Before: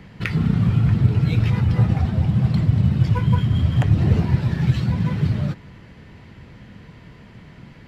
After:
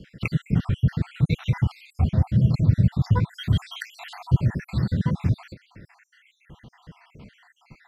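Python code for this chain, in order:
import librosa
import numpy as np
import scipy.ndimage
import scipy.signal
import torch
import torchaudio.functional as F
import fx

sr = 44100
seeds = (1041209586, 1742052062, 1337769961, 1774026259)

y = fx.spec_dropout(x, sr, seeds[0], share_pct=64)
y = fx.high_shelf(y, sr, hz=fx.line((3.34, 2100.0), (4.13, 2700.0)), db=8.5, at=(3.34, 4.13), fade=0.02)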